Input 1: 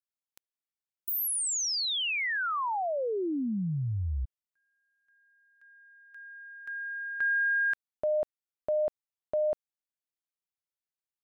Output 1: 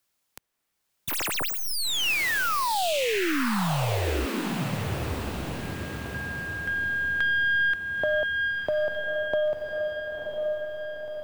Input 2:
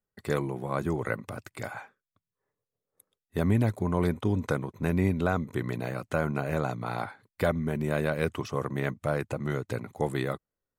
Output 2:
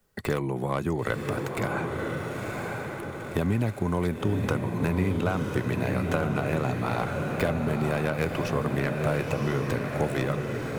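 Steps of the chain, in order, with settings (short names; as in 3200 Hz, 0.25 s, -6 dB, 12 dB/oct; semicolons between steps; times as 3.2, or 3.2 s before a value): tracing distortion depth 0.1 ms; dynamic EQ 2600 Hz, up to +6 dB, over -55 dBFS, Q 5.9; compressor 2:1, threshold -35 dBFS; diffused feedback echo 1.003 s, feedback 46%, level -4 dB; three-band squash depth 40%; gain +7 dB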